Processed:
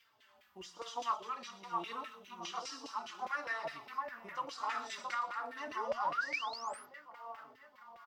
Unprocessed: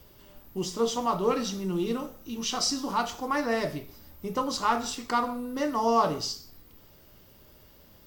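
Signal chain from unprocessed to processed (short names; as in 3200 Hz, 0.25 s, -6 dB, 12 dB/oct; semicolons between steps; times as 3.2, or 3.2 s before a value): HPF 57 Hz; passive tone stack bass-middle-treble 5-5-5; limiter -33 dBFS, peak gain reduction 10.5 dB; random-step tremolo; split-band echo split 2400 Hz, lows 0.671 s, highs 0.119 s, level -5.5 dB; painted sound rise, 5.67–6.86, 270–12000 Hz -46 dBFS; LFO band-pass saw down 4.9 Hz 600–2300 Hz; endless flanger 3.9 ms -1.1 Hz; gain +17 dB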